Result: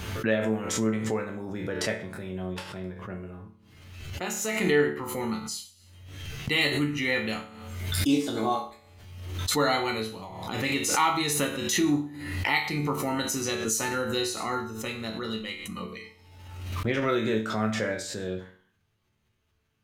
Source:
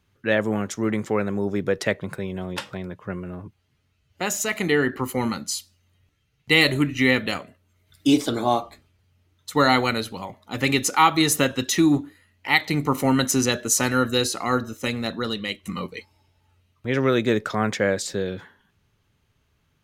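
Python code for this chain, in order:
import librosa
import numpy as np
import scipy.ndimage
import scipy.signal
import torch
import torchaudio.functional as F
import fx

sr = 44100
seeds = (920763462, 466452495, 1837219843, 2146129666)

y = fx.resonator_bank(x, sr, root=38, chord='major', decay_s=0.44)
y = fx.transient(y, sr, attack_db=10, sustain_db=6, at=(15.91, 17.15), fade=0.02)
y = fx.pre_swell(y, sr, db_per_s=45.0)
y = F.gain(torch.from_numpy(y), 6.5).numpy()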